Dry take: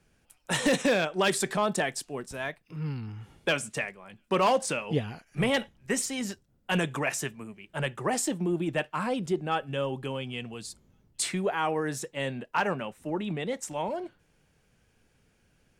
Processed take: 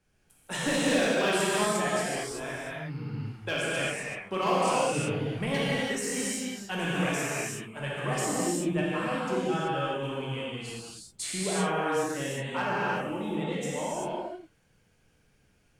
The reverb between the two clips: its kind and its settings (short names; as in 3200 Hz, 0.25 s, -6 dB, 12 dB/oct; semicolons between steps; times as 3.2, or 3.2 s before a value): non-linear reverb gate 0.41 s flat, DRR -8 dB; gain -8 dB